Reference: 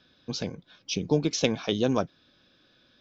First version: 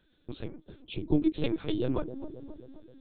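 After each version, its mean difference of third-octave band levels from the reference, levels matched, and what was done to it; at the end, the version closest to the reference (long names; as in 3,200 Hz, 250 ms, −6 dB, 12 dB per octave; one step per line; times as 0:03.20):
7.0 dB: parametric band 310 Hz +13.5 dB 0.29 octaves
on a send: delay with a band-pass on its return 264 ms, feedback 59%, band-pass 400 Hz, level −10.5 dB
on the sum: linear-prediction vocoder at 8 kHz pitch kept
level −7.5 dB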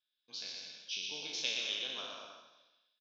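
11.5 dB: peak hold with a decay on every bin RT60 1.04 s
noise gate −56 dBFS, range −17 dB
resonant band-pass 3,400 Hz, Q 1.7
bouncing-ball delay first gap 120 ms, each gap 0.75×, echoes 5
level −7.5 dB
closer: first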